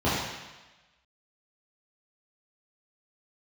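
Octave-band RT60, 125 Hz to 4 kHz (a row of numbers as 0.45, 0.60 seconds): 1.0, 1.0, 1.1, 1.1, 1.3, 1.2 seconds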